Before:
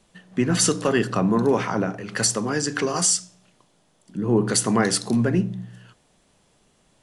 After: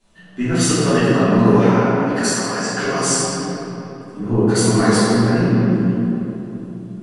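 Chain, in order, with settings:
0:01.69–0:02.79: high-pass filter 550 Hz 24 dB per octave
convolution reverb RT60 3.6 s, pre-delay 3 ms, DRR −16.5 dB
level −10.5 dB

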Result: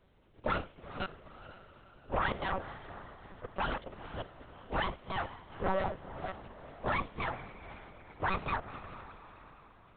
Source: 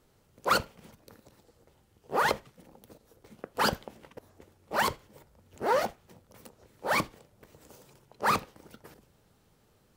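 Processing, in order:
delay that plays each chunk backwards 263 ms, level −8.5 dB
brickwall limiter −23 dBFS, peak gain reduction 9.5 dB
feedback delay with all-pass diffusion 454 ms, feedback 48%, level −13.5 dB
one-pitch LPC vocoder at 8 kHz 190 Hz

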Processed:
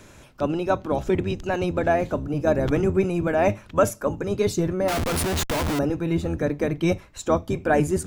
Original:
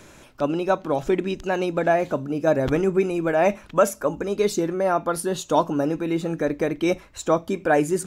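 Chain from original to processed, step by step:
sub-octave generator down 1 octave, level 0 dB
0:04.88–0:05.79: comparator with hysteresis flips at −34 dBFS
level −1.5 dB

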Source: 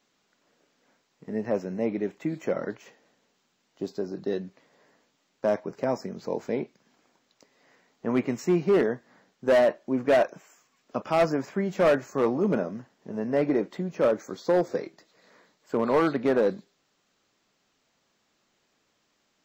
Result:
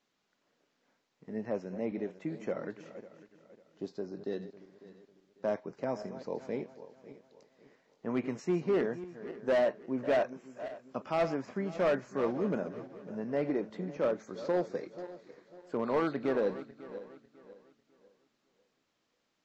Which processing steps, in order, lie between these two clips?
feedback delay that plays each chunk backwards 274 ms, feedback 55%, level −13 dB
low-pass filter 6,400 Hz 12 dB per octave
level −7.5 dB

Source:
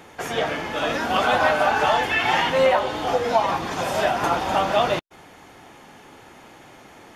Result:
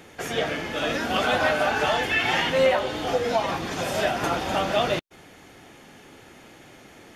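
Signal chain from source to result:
parametric band 950 Hz −7.5 dB 0.93 octaves

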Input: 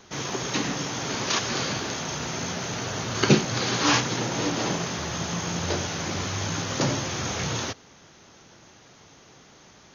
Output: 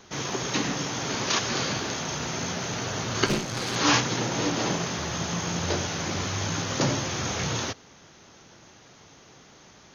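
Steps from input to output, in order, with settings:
0:03.26–0:03.76: tube saturation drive 21 dB, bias 0.7

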